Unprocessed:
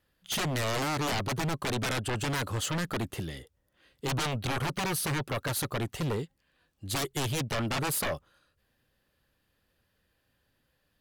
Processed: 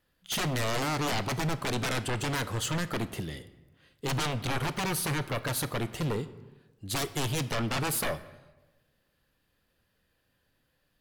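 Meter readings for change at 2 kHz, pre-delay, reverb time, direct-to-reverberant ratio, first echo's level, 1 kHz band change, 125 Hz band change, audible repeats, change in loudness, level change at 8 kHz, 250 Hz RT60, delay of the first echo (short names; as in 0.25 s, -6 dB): 0.0 dB, 3 ms, 1.1 s, 12.0 dB, none, +0.5 dB, +0.5 dB, none, +0.5 dB, 0.0 dB, 1.2 s, none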